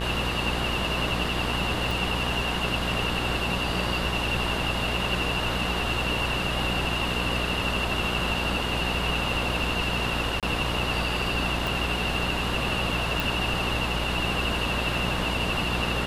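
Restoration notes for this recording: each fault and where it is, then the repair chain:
buzz 60 Hz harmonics 34 -31 dBFS
1.91 pop
10.4–10.43 gap 27 ms
11.67 pop
13.2 pop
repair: de-click; de-hum 60 Hz, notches 34; interpolate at 10.4, 27 ms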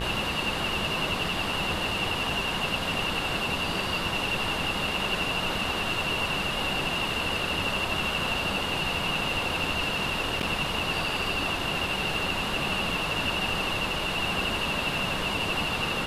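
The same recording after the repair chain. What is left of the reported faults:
1.91 pop
11.67 pop

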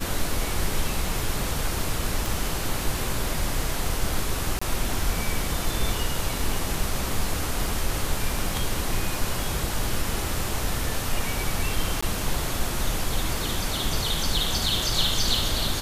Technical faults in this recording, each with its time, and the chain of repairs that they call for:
2.26 pop
4.59–4.62 gap 25 ms
12.01–12.03 gap 15 ms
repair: de-click; interpolate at 4.59, 25 ms; interpolate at 12.01, 15 ms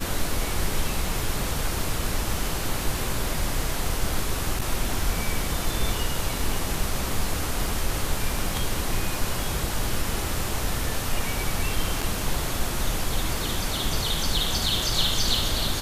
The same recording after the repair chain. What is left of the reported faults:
none

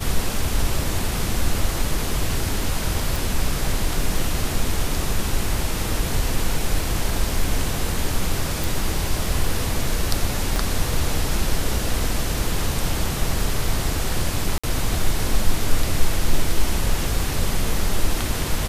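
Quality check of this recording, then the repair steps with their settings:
3.16 pop
8.64 pop
10.56 pop
14.58–14.63 gap 55 ms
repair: de-click; interpolate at 14.58, 55 ms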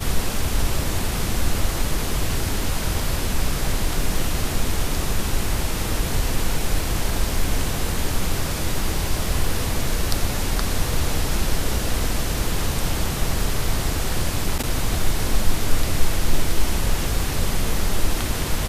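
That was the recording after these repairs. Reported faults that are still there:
10.56 pop

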